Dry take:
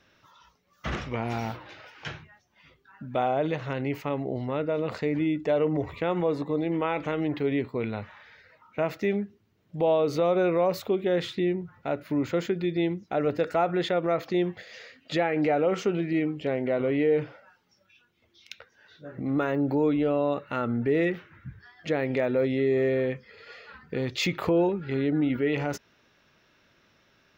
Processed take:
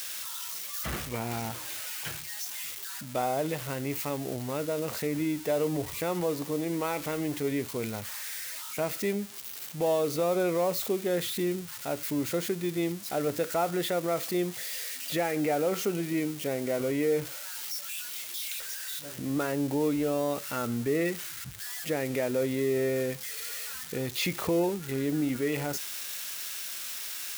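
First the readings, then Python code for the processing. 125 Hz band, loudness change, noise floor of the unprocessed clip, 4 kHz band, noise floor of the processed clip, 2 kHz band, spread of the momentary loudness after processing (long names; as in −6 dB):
−3.5 dB, −3.5 dB, −66 dBFS, +3.0 dB, −41 dBFS, −2.0 dB, 7 LU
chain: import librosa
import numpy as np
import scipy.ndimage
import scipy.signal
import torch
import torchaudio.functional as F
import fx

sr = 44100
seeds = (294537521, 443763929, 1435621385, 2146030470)

y = x + 0.5 * 10.0 ** (-23.5 / 20.0) * np.diff(np.sign(x), prepend=np.sign(x[:1]))
y = F.gain(torch.from_numpy(y), -3.5).numpy()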